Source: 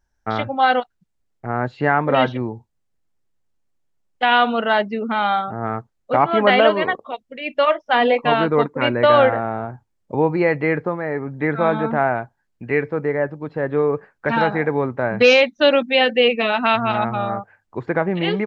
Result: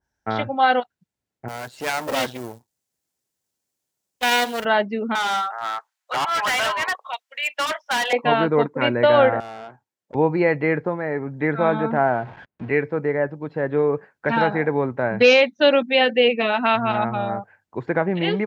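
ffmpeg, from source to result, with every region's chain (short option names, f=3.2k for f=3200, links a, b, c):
-filter_complex "[0:a]asettb=1/sr,asplit=3[a][b][c];[a]atrim=end=1.484[d];[b]atrim=start=1.48:end=4.65,asetpts=PTS-STARTPTS,afade=t=in:d=0.004:c=qsin,afade=t=out:st=3.166:d=0.004:c=qsin,aeval=exprs='max(val(0),0)':c=same,acrusher=bits=8:mode=log:mix=0:aa=0.000001,bass=f=250:g=-5,treble=f=4k:g=12[e];[c]atrim=start=4.646[f];[d][e]acrossfade=d=0.004:c1=hsin:c2=qsin[g];[g][f]acrossfade=d=0.004:c1=qsin:c2=hsin,asettb=1/sr,asplit=3[h][i][j];[h]atrim=end=5.154[k];[i]atrim=start=5.15:end=8.13,asetpts=PTS-STARTPTS,afade=t=in:d=0.004:c=qsin,afade=t=out:st=2.976:d=0.004:c=qsin,highpass=f=910:w=0.5412,highpass=f=910:w=1.3066,acontrast=82,asoftclip=type=hard:threshold=-18dB[l];[j]atrim=start=8.126[m];[k][l]acrossfade=d=0.004:c1=hsin:c2=qsin[n];[n][m]acrossfade=d=0.004:c1=qsin:c2=hsin,asettb=1/sr,asplit=3[o][p][q];[o]atrim=end=9.404[r];[p]atrim=start=9.4:end=10.15,asetpts=PTS-STARTPTS,afade=t=in:d=0.004:c=qsin,afade=t=out:st=0.746:d=0.004:c=qsin,highpass=f=460:p=1,aeval=exprs='(tanh(31.6*val(0)+0.6)-tanh(0.6))/31.6':c=same[s];[q]atrim=start=10.146[t];[r][s]acrossfade=d=0.004:c1=hsin:c2=qsin[u];[u][t]acrossfade=d=0.004:c1=qsin:c2=hsin,asettb=1/sr,asplit=3[v][w][x];[v]atrim=end=11.974[y];[w]atrim=start=11.97:end=12.69,asetpts=PTS-STARTPTS,afade=t=in:d=0.004:c=qsin,afade=t=out:st=0.716:d=0.004:c=qsin,aeval=exprs='val(0)+0.5*0.0251*sgn(val(0))':c=same,lowpass=2.7k,aemphasis=mode=reproduction:type=75fm[z];[x]atrim=start=12.686[aa];[y][z]acrossfade=d=0.004:c1=hsin:c2=qsin[ab];[ab][aa]acrossfade=d=0.004:c1=qsin:c2=hsin,highpass=84,bandreject=f=1.2k:w=13,adynamicequalizer=threshold=0.0447:dfrequency=2300:dqfactor=0.7:tfrequency=2300:tqfactor=0.7:attack=5:release=100:ratio=0.375:range=1.5:mode=cutabove:tftype=highshelf,volume=-1dB"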